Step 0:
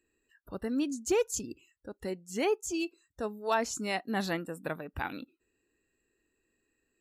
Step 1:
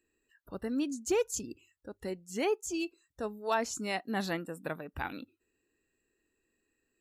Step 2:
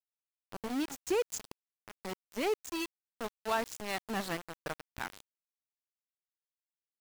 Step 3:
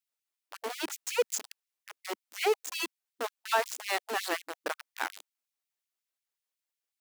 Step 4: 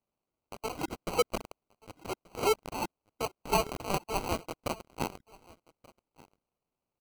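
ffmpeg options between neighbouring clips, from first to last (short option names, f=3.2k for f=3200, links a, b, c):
-af "bandreject=f=50:t=h:w=6,bandreject=f=100:t=h:w=6,volume=-1.5dB"
-af "aeval=exprs='val(0)*gte(abs(val(0)),0.0224)':c=same,volume=-1.5dB"
-af "afftfilt=real='re*gte(b*sr/1024,240*pow(2100/240,0.5+0.5*sin(2*PI*5.5*pts/sr)))':imag='im*gte(b*sr/1024,240*pow(2100/240,0.5+0.5*sin(2*PI*5.5*pts/sr)))':win_size=1024:overlap=0.75,volume=6dB"
-af "acrusher=samples=25:mix=1:aa=0.000001,aecho=1:1:1181:0.0668"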